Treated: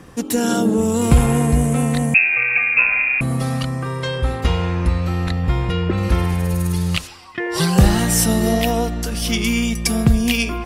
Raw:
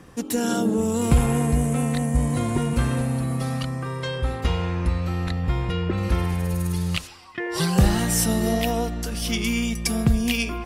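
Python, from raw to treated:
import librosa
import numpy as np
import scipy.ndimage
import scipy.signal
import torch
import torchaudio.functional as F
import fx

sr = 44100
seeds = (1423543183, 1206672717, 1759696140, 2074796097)

y = fx.freq_invert(x, sr, carrier_hz=2600, at=(2.14, 3.21))
y = F.gain(torch.from_numpy(y), 5.0).numpy()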